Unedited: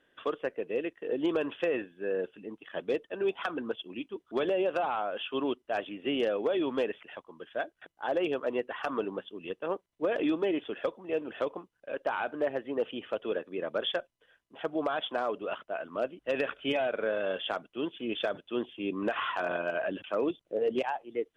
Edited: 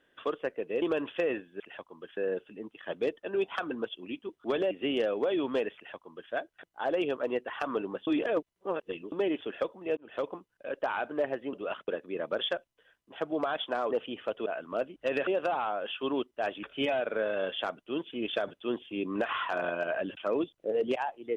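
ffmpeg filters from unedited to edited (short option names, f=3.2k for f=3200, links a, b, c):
-filter_complex "[0:a]asplit=14[a][b][c][d][e][f][g][h][i][j][k][l][m][n];[a]atrim=end=0.822[o];[b]atrim=start=1.258:end=2.042[p];[c]atrim=start=6.978:end=7.552[q];[d]atrim=start=2.038:end=4.582[r];[e]atrim=start=5.938:end=9.302[s];[f]atrim=start=9.298:end=10.352,asetpts=PTS-STARTPTS,areverse[t];[g]atrim=start=10.348:end=11.2,asetpts=PTS-STARTPTS,afade=t=out:st=0.848:d=0.004:c=hsin[u];[h]atrim=start=11.2:end=12.762,asetpts=PTS-STARTPTS,afade=t=in:d=0.28[v];[i]atrim=start=15.338:end=15.692[w];[j]atrim=start=13.308:end=15.342[x];[k]atrim=start=12.758:end=13.312[y];[l]atrim=start=15.688:end=16.502[z];[m]atrim=start=4.578:end=5.942[aa];[n]atrim=start=16.498[ab];[o][p]acrossfade=d=0.004:c1=hsin:c2=hsin[ac];[ac][q]acrossfade=d=0.004:c1=hsin:c2=hsin[ad];[ad][r]acrossfade=d=0.004:c1=hsin:c2=hsin[ae];[ae][s]acrossfade=d=0.004:c1=hsin:c2=hsin[af];[af][t]acrossfade=d=0.004:c1=hsin:c2=hsin[ag];[u][v]concat=n=2:v=0:a=1[ah];[ag][ah]acrossfade=d=0.004:c1=hsin:c2=hsin[ai];[ai][w]acrossfade=d=0.004:c1=hsin:c2=hsin[aj];[aj][x]acrossfade=d=0.004:c1=hsin:c2=hsin[ak];[ak][y]acrossfade=d=0.004:c1=hsin:c2=hsin[al];[al][z]acrossfade=d=0.004:c1=hsin:c2=hsin[am];[am][aa]acrossfade=d=0.004:c1=hsin:c2=hsin[an];[an][ab]acrossfade=d=0.004:c1=hsin:c2=hsin"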